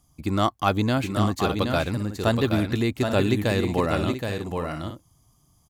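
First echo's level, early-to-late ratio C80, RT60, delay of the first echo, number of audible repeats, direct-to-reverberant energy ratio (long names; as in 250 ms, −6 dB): −5.5 dB, no reverb audible, no reverb audible, 773 ms, 2, no reverb audible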